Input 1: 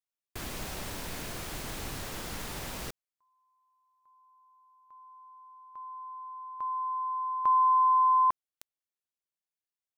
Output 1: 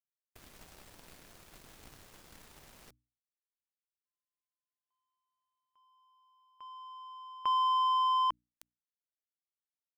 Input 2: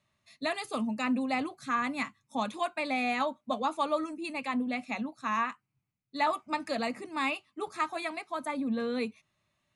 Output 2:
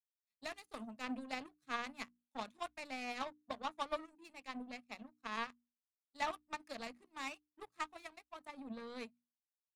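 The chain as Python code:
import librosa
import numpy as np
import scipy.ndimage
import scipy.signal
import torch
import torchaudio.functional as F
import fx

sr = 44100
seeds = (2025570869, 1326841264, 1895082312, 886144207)

y = fx.power_curve(x, sr, exponent=2.0)
y = fx.hum_notches(y, sr, base_hz=60, count=5)
y = F.gain(torch.from_numpy(y), -4.0).numpy()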